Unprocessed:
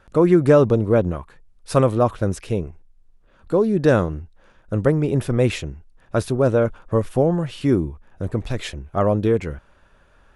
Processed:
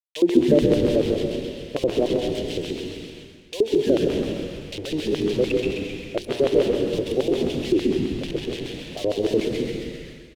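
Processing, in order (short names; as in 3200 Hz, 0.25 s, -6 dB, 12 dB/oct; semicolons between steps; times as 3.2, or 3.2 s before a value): zero-crossing step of -26.5 dBFS; loudest bins only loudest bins 32; gate -26 dBFS, range -10 dB; bit-crush 5-bit; fixed phaser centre 510 Hz, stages 4; LFO band-pass square 6.8 Hz 320–3100 Hz; de-hum 117.4 Hz, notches 3; frequency-shifting echo 0.131 s, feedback 50%, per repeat -98 Hz, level -5 dB; plate-style reverb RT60 1.6 s, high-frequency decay 0.8×, pre-delay 0.11 s, DRR 2.5 dB; mismatched tape noise reduction encoder only; gain +4.5 dB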